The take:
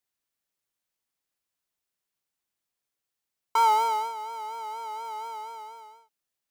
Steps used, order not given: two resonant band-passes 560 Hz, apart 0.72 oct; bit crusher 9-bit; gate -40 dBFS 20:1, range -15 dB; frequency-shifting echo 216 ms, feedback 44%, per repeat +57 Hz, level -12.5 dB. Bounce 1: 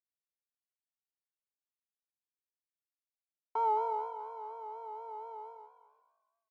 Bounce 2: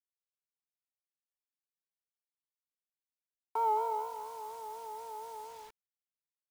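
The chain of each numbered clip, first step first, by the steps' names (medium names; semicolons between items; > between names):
bit crusher > gate > frequency-shifting echo > two resonant band-passes; frequency-shifting echo > gate > two resonant band-passes > bit crusher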